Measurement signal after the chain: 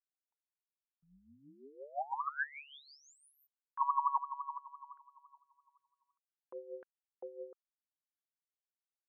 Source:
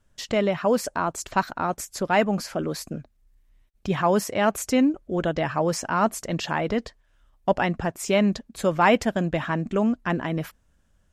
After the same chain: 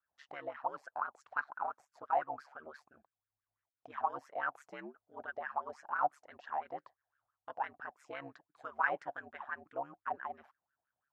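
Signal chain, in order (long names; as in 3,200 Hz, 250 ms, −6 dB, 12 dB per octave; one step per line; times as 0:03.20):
ring modulation 71 Hz
LFO wah 5.9 Hz 710–1,600 Hz, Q 8.2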